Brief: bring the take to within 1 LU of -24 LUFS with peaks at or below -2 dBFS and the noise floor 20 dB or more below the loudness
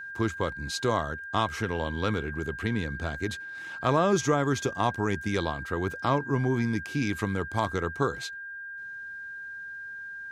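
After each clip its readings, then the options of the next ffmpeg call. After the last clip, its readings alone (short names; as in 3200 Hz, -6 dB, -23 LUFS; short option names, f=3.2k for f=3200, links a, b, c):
steady tone 1600 Hz; tone level -37 dBFS; loudness -29.5 LUFS; peak -11.0 dBFS; loudness target -24.0 LUFS
-> -af "bandreject=f=1.6k:w=30"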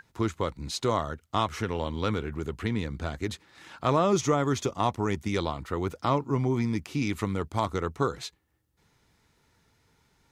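steady tone none; loudness -29.0 LUFS; peak -10.5 dBFS; loudness target -24.0 LUFS
-> -af "volume=5dB"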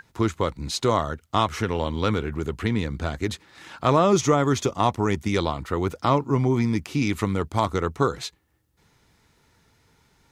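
loudness -24.5 LUFS; peak -5.5 dBFS; noise floor -65 dBFS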